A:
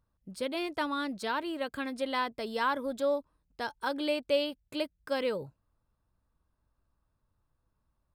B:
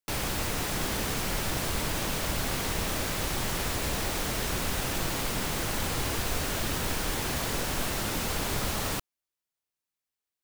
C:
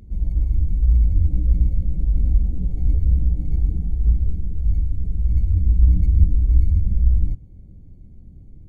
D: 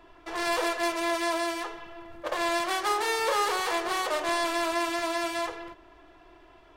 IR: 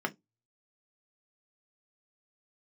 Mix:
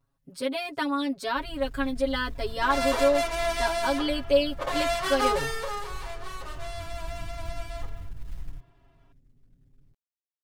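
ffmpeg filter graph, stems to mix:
-filter_complex "[0:a]aecho=1:1:7.3:0.81,volume=-3dB[a];[2:a]acrusher=bits=8:mode=log:mix=0:aa=0.000001,adelay=1250,volume=-20dB,asplit=2[b][c];[c]volume=-14dB[d];[3:a]adelay=2350,volume=-2.5dB,afade=t=out:st=5.17:d=0.59:silence=0.251189[e];[4:a]atrim=start_sample=2205[f];[d][f]afir=irnorm=-1:irlink=0[g];[a][b][e][g]amix=inputs=4:normalize=0,aecho=1:1:7.3:0.99"

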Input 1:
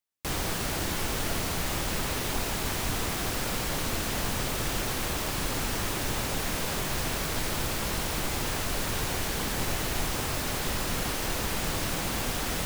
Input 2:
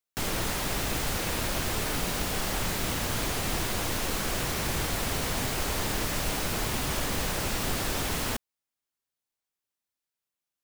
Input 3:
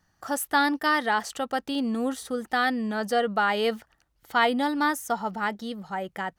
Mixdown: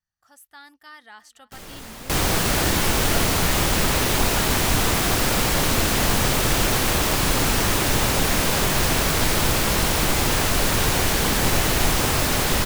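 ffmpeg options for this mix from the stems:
-filter_complex "[0:a]adelay=1850,volume=-1dB[a];[1:a]adelay=1350,volume=-18.5dB[b];[2:a]equalizer=f=380:w=0.46:g=-13,volume=-18.5dB,asplit=2[c][d];[d]volume=-22dB,aecho=0:1:293:1[e];[a][b][c][e]amix=inputs=4:normalize=0,dynaudnorm=f=140:g=21:m=11dB"

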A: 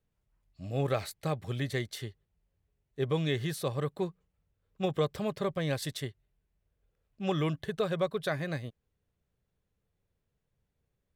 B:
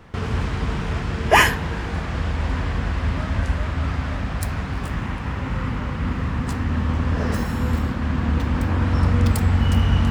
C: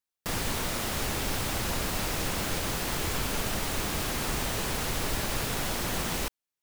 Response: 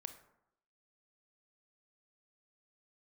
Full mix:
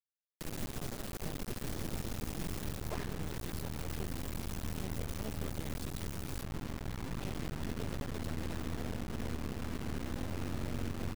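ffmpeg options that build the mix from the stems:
-filter_complex "[0:a]alimiter=level_in=3.5dB:limit=-24dB:level=0:latency=1:release=175,volume=-3.5dB,volume=-1dB[a];[1:a]afwtdn=0.0794,lowpass=3k,adelay=1600,volume=-9.5dB,asplit=2[b][c];[c]volume=-5.5dB[d];[2:a]adelay=150,volume=-1.5dB,afade=t=out:st=2.51:d=0.32:silence=0.354813[e];[3:a]atrim=start_sample=2205[f];[d][f]afir=irnorm=-1:irlink=0[g];[a][b][e][g]amix=inputs=4:normalize=0,acrossover=split=160|420[h][i][j];[h]acompressor=threshold=-36dB:ratio=4[k];[i]acompressor=threshold=-37dB:ratio=4[l];[j]acompressor=threshold=-50dB:ratio=4[m];[k][l][m]amix=inputs=3:normalize=0,acrusher=bits=4:dc=4:mix=0:aa=0.000001"

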